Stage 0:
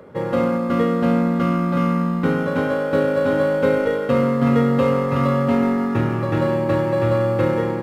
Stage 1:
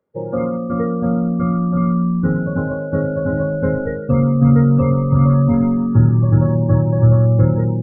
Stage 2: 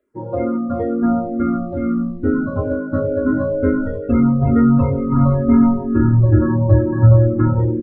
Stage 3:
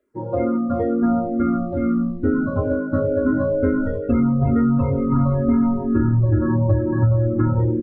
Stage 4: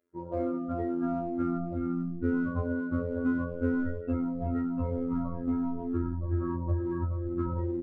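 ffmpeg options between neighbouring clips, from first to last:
ffmpeg -i in.wav -af "asubboost=boost=7:cutoff=150,afftdn=noise_reduction=32:noise_floor=-21" out.wav
ffmpeg -i in.wav -filter_complex "[0:a]aecho=1:1:3:0.87,asplit=2[link_01][link_02];[link_02]afreqshift=-2.2[link_03];[link_01][link_03]amix=inputs=2:normalize=1,volume=4dB" out.wav
ffmpeg -i in.wav -af "acompressor=threshold=-14dB:ratio=6" out.wav
ffmpeg -i in.wav -filter_complex "[0:a]afftfilt=real='hypot(re,im)*cos(PI*b)':imag='0':win_size=2048:overlap=0.75,asplit=2[link_01][link_02];[link_02]asoftclip=type=hard:threshold=-24dB,volume=-11dB[link_03];[link_01][link_03]amix=inputs=2:normalize=0,volume=-8dB" out.wav

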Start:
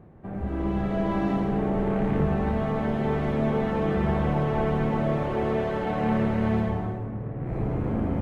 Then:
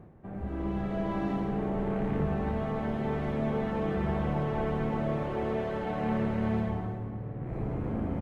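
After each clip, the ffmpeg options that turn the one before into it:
ffmpeg -i in.wav -af "areverse,acompressor=mode=upward:threshold=-36dB:ratio=2.5,areverse,aecho=1:1:345|690|1035|1380:0.112|0.0505|0.0227|0.0102,volume=-5.5dB" out.wav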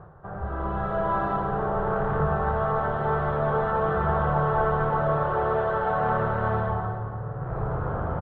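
ffmpeg -i in.wav -af "firequalizer=gain_entry='entry(160,0);entry(230,-16);entry(430,1);entry(1400,13);entry(2200,-12);entry(3400,-3);entry(5000,-13);entry(7200,-19)':delay=0.05:min_phase=1,volume=5dB" out.wav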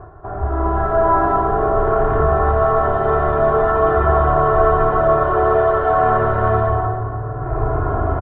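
ffmpeg -i in.wav -af "lowpass=frequency=1700:poles=1,aecho=1:1:2.9:0.98,volume=7.5dB" out.wav

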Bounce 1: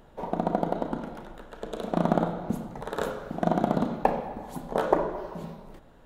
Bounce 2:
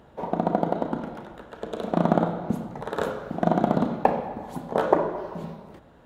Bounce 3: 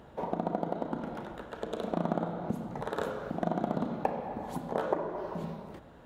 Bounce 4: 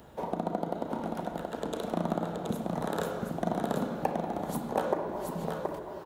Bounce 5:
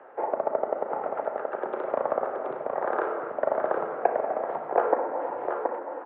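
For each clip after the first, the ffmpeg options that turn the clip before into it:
ffmpeg -i in.wav -af "highpass=frequency=50:width=0.5412,highpass=frequency=50:width=1.3066,highshelf=frequency=5400:gain=-7,volume=3dB" out.wav
ffmpeg -i in.wav -af "acompressor=threshold=-34dB:ratio=2" out.wav
ffmpeg -i in.wav -filter_complex "[0:a]acrossover=split=320|2400[link_01][link_02][link_03];[link_03]crystalizer=i=2:c=0[link_04];[link_01][link_02][link_04]amix=inputs=3:normalize=0,aecho=1:1:725:0.631" out.wav
ffmpeg -i in.wav -af "highpass=frequency=540:width_type=q:width=0.5412,highpass=frequency=540:width_type=q:width=1.307,lowpass=frequency=2100:width_type=q:width=0.5176,lowpass=frequency=2100:width_type=q:width=0.7071,lowpass=frequency=2100:width_type=q:width=1.932,afreqshift=-79,volume=8.5dB" out.wav

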